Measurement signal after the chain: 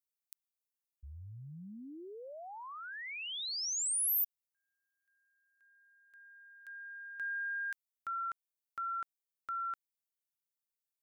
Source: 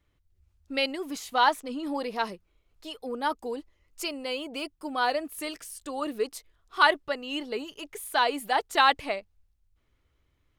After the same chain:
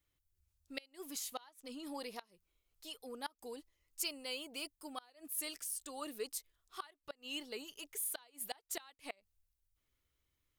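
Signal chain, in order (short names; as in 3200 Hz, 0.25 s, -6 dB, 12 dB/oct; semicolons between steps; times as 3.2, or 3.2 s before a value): flipped gate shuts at -17 dBFS, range -28 dB; pre-emphasis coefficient 0.8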